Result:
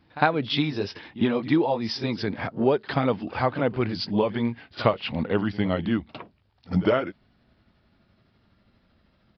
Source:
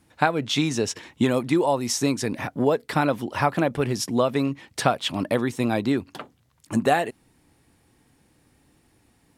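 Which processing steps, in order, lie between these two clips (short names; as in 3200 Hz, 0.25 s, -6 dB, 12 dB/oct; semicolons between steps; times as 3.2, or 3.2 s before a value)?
gliding pitch shift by -5.5 st starting unshifted; reverse echo 55 ms -18 dB; downsampling 11025 Hz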